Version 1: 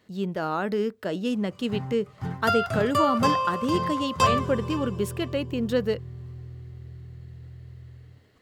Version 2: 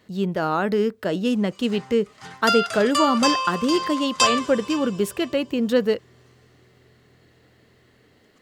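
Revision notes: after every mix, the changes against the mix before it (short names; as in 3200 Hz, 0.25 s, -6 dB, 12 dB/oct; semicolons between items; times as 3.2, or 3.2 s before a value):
speech +5.0 dB; background: add weighting filter ITU-R 468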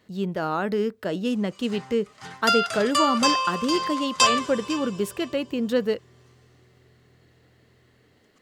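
speech -3.5 dB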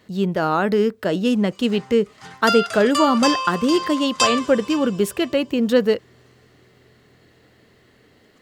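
speech +6.5 dB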